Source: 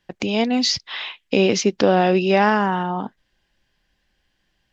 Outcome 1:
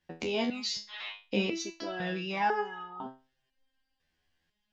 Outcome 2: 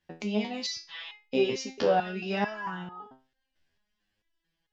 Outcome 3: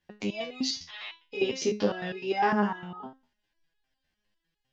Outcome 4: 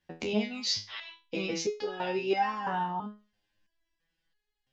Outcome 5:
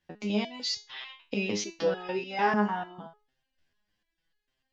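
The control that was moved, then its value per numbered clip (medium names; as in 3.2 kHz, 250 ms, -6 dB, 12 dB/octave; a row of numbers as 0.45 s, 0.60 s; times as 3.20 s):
resonator arpeggio, rate: 2 Hz, 4.5 Hz, 9.9 Hz, 3 Hz, 6.7 Hz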